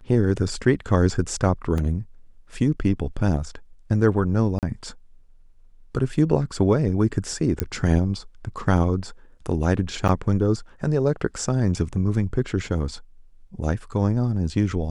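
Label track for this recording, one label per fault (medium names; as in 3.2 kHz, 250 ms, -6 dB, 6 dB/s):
1.780000	1.780000	dropout 2.4 ms
4.590000	4.630000	dropout 38 ms
7.600000	7.600000	pop -6 dBFS
10.080000	10.090000	dropout 7.9 ms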